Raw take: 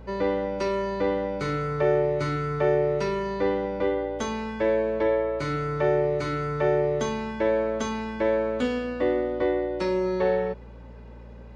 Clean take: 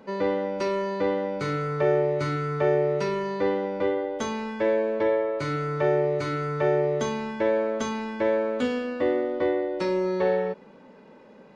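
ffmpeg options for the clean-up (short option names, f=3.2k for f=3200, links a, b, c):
-af "bandreject=f=58.1:t=h:w=4,bandreject=f=116.2:t=h:w=4,bandreject=f=174.3:t=h:w=4,bandreject=f=232.4:t=h:w=4"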